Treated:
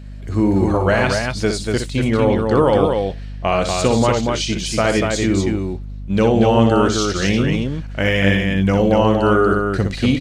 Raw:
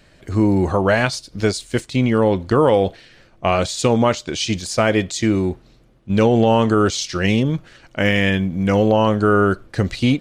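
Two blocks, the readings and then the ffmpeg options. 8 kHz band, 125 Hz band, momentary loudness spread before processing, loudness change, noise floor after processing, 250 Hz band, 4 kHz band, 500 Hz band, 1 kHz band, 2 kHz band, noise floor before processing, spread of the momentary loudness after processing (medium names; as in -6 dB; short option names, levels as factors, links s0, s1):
+1.0 dB, +1.5 dB, 8 LU, +1.0 dB, -30 dBFS, +1.0 dB, +1.0 dB, +1.0 dB, +1.0 dB, +1.0 dB, -52 dBFS, 7 LU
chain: -af "aeval=exprs='val(0)+0.0224*(sin(2*PI*50*n/s)+sin(2*PI*2*50*n/s)/2+sin(2*PI*3*50*n/s)/3+sin(2*PI*4*50*n/s)/4+sin(2*PI*5*50*n/s)/5)':c=same,aecho=1:1:61.22|239.1:0.447|0.631,volume=0.891"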